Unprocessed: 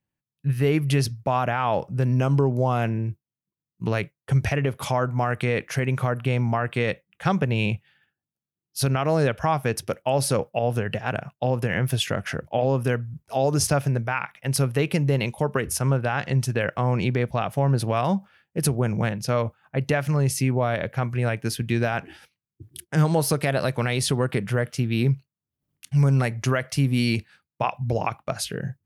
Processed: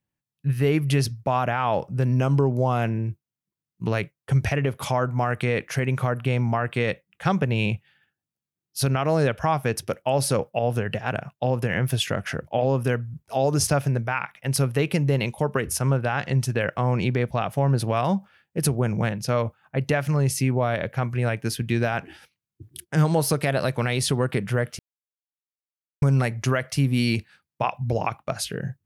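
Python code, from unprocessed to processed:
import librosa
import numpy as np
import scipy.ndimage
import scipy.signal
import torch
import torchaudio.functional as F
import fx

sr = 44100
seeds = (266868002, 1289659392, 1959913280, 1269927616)

y = fx.edit(x, sr, fx.silence(start_s=24.79, length_s=1.23), tone=tone)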